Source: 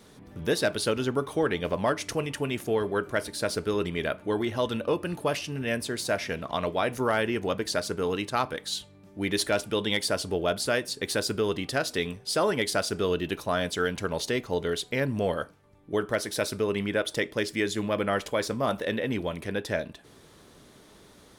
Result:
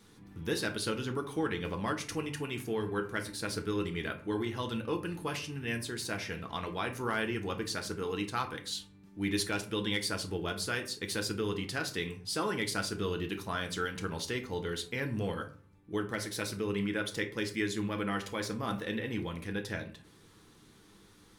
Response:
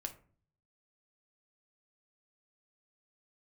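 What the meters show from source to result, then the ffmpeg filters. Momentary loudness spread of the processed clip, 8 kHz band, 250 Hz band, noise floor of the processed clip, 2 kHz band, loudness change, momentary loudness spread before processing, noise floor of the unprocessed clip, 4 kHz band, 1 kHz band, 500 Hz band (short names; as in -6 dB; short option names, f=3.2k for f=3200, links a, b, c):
5 LU, -5.0 dB, -4.0 dB, -59 dBFS, -5.0 dB, -6.5 dB, 5 LU, -54 dBFS, -5.5 dB, -6.5 dB, -9.5 dB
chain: -filter_complex "[0:a]equalizer=f=610:w=3.5:g=-13.5[a];[1:a]atrim=start_sample=2205,asetrate=41895,aresample=44100[b];[a][b]afir=irnorm=-1:irlink=0,volume=-3dB"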